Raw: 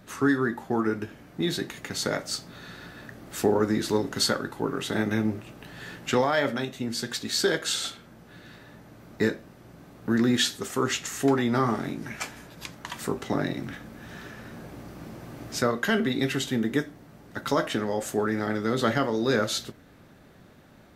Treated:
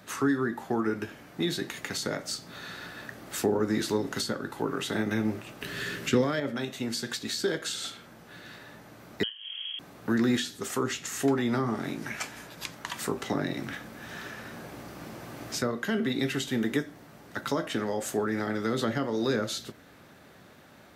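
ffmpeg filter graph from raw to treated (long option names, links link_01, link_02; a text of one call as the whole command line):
ffmpeg -i in.wav -filter_complex "[0:a]asettb=1/sr,asplit=3[link_01][link_02][link_03];[link_01]atrim=end=5.614[link_04];[link_02]atrim=start=5.61:end=6.4,asetpts=PTS-STARTPTS,afade=type=in:duration=0.004:curve=qsin,afade=type=out:start_time=0.786:duration=0.004:curve=qsin,equalizer=frequency=810:width=2.6:gain=-12.5,acontrast=64,aeval=exprs='val(0)+0.00562*sin(2*PI*400*n/s)':channel_layout=same[link_05];[link_03]atrim=start=6.396[link_06];[link_04][link_05]acrossfade=duration=0.004:curve1=hsin:curve2=qsin[link_07];[link_07][link_06]acrossfade=duration=0.004:curve1=qsin:curve2=hsin,asettb=1/sr,asplit=3[link_08][link_09][link_10];[link_08]atrim=end=9.234[link_11];[link_09]atrim=start=9.23:end=9.79,asetpts=PTS-STARTPTS,afade=type=in:duration=0.004:curve=qsin,afade=type=out:start_time=0.556:duration=0.004:curve=qsin,equalizer=frequency=2200:width=0.48:gain=-12,acompressor=mode=upward:threshold=-28dB:ratio=2.5:attack=3.2:release=140:knee=2.83:detection=peak,lowpass=frequency=2900:width_type=q:width=0.5098,lowpass=frequency=2900:width_type=q:width=0.6013,lowpass=frequency=2900:width_type=q:width=0.9,lowpass=frequency=2900:width_type=q:width=2.563,afreqshift=-3400[link_12];[link_10]atrim=start=9.786[link_13];[link_11][link_12]acrossfade=duration=0.004:curve1=hsin:curve2=qsin[link_14];[link_14][link_13]acrossfade=duration=0.004:curve1=qsin:curve2=hsin,highpass=55,lowshelf=frequency=410:gain=-8,acrossover=split=400[link_15][link_16];[link_16]acompressor=threshold=-35dB:ratio=10[link_17];[link_15][link_17]amix=inputs=2:normalize=0,volume=4dB" out.wav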